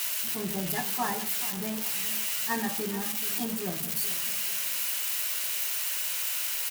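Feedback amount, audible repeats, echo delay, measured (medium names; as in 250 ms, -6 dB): 36%, 3, 428 ms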